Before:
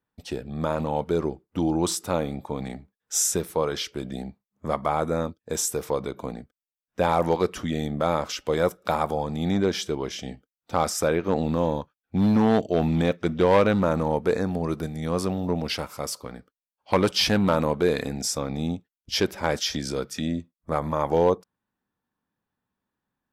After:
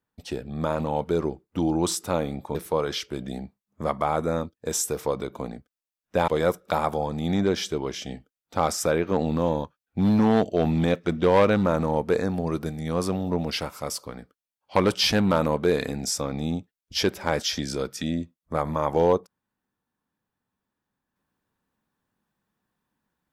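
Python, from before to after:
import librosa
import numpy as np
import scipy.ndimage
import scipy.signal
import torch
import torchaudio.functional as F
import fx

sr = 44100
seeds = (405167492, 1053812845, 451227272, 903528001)

y = fx.edit(x, sr, fx.cut(start_s=2.55, length_s=0.84),
    fx.cut(start_s=7.12, length_s=1.33), tone=tone)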